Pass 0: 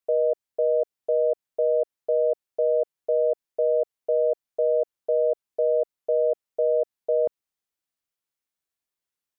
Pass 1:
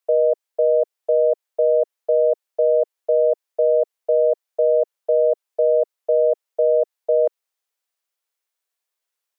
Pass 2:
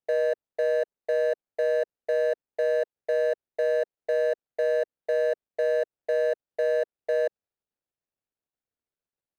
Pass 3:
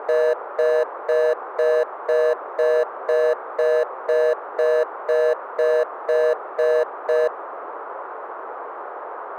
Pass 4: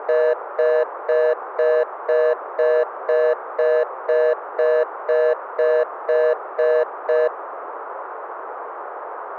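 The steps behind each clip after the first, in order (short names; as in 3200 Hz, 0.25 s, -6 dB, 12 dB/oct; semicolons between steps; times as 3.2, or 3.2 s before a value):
steep high-pass 410 Hz; gain +5.5 dB
median filter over 41 samples; limiter -19 dBFS, peak gain reduction 6 dB
band noise 390–1300 Hz -39 dBFS; gain +6 dB
BPF 290–3100 Hz; gain +1.5 dB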